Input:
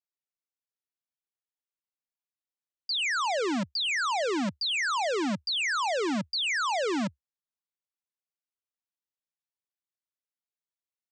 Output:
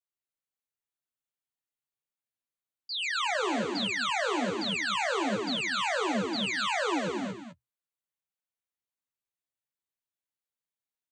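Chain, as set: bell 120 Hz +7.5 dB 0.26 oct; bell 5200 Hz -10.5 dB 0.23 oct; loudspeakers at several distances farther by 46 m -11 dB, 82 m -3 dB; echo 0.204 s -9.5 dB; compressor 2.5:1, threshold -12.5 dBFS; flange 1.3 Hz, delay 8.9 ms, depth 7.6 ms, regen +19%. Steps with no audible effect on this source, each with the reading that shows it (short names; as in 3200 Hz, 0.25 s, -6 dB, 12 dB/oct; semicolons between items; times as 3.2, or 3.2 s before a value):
compressor, threshold -12.5 dBFS: input peak -15.5 dBFS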